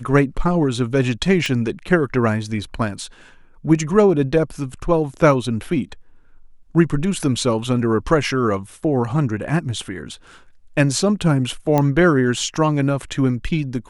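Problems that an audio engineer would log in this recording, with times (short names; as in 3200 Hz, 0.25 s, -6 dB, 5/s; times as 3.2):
1.46 pop -10 dBFS
11.78 pop -6 dBFS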